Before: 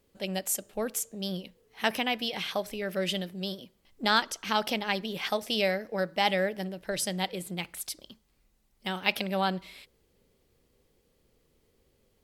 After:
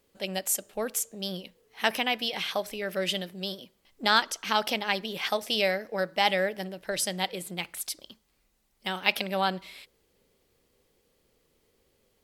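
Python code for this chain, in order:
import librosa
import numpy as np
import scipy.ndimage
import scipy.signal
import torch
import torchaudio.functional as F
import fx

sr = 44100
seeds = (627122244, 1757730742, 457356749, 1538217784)

y = fx.low_shelf(x, sr, hz=290.0, db=-7.5)
y = F.gain(torch.from_numpy(y), 2.5).numpy()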